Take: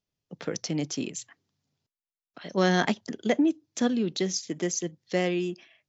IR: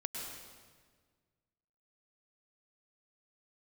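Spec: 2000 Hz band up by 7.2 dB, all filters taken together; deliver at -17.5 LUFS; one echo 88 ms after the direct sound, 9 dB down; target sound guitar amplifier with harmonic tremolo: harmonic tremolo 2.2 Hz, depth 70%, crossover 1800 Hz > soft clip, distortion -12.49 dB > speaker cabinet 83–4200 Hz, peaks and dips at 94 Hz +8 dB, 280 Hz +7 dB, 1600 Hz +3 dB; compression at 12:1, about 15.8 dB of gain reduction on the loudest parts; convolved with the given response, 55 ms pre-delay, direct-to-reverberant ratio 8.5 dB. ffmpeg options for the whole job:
-filter_complex "[0:a]equalizer=f=2k:t=o:g=6.5,acompressor=threshold=-34dB:ratio=12,aecho=1:1:88:0.355,asplit=2[a][b];[1:a]atrim=start_sample=2205,adelay=55[c];[b][c]afir=irnorm=-1:irlink=0,volume=-9.5dB[d];[a][d]amix=inputs=2:normalize=0,acrossover=split=1800[e][f];[e]aeval=exprs='val(0)*(1-0.7/2+0.7/2*cos(2*PI*2.2*n/s))':c=same[g];[f]aeval=exprs='val(0)*(1-0.7/2-0.7/2*cos(2*PI*2.2*n/s))':c=same[h];[g][h]amix=inputs=2:normalize=0,asoftclip=threshold=-35.5dB,highpass=83,equalizer=f=94:t=q:w=4:g=8,equalizer=f=280:t=q:w=4:g=7,equalizer=f=1.6k:t=q:w=4:g=3,lowpass=f=4.2k:w=0.5412,lowpass=f=4.2k:w=1.3066,volume=25.5dB"

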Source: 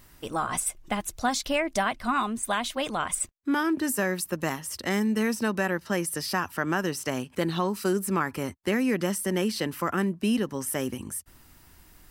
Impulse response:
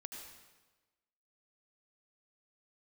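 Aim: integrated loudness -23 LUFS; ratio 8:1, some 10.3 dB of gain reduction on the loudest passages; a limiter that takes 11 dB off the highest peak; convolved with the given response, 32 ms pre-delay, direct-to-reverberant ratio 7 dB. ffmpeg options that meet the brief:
-filter_complex "[0:a]acompressor=threshold=-32dB:ratio=8,alimiter=level_in=5.5dB:limit=-24dB:level=0:latency=1,volume=-5.5dB,asplit=2[a][b];[1:a]atrim=start_sample=2205,adelay=32[c];[b][c]afir=irnorm=-1:irlink=0,volume=-3.5dB[d];[a][d]amix=inputs=2:normalize=0,volume=15.5dB"

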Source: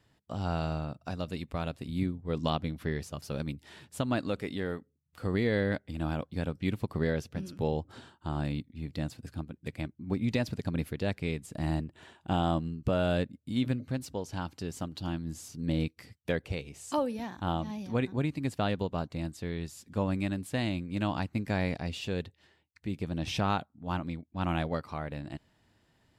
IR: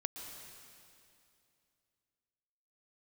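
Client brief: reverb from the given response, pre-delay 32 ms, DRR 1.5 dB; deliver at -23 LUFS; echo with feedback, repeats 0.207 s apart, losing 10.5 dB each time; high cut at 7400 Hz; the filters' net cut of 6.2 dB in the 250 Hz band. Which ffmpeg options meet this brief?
-filter_complex "[0:a]lowpass=7.4k,equalizer=f=250:t=o:g=-9,aecho=1:1:207|414|621:0.299|0.0896|0.0269,asplit=2[a][b];[1:a]atrim=start_sample=2205,adelay=32[c];[b][c]afir=irnorm=-1:irlink=0,volume=-1dB[d];[a][d]amix=inputs=2:normalize=0,volume=10.5dB"

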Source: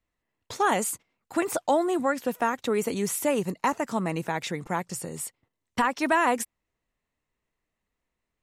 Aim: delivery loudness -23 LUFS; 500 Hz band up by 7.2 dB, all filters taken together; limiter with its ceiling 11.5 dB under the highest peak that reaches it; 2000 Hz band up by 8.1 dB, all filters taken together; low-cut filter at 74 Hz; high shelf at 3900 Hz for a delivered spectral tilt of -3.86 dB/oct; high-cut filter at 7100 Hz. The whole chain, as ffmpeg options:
-af "highpass=74,lowpass=7.1k,equalizer=f=500:t=o:g=8.5,equalizer=f=2k:t=o:g=8.5,highshelf=f=3.9k:g=4,volume=4.5dB,alimiter=limit=-11.5dB:level=0:latency=1"

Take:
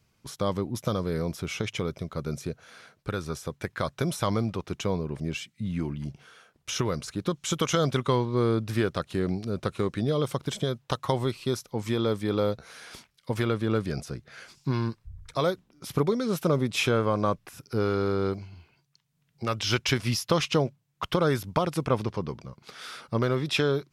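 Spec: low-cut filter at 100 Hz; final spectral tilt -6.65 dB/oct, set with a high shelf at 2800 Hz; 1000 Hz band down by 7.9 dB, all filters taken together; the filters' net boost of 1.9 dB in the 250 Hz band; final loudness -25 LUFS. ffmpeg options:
-af "highpass=100,equalizer=f=250:t=o:g=3.5,equalizer=f=1k:t=o:g=-9,highshelf=f=2.8k:g=-8,volume=4.5dB"

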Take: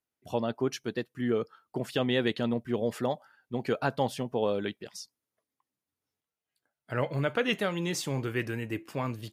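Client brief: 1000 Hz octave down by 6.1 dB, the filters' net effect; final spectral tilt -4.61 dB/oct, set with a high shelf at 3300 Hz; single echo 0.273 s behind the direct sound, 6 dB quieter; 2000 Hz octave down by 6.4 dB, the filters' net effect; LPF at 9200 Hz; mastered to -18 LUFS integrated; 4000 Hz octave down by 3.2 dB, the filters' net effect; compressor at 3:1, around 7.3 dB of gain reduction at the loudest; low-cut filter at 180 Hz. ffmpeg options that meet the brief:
-af "highpass=180,lowpass=9.2k,equalizer=f=1k:t=o:g=-7.5,equalizer=f=2k:t=o:g=-7,highshelf=f=3.3k:g=8.5,equalizer=f=4k:t=o:g=-7,acompressor=threshold=-35dB:ratio=3,aecho=1:1:273:0.501,volume=20.5dB"

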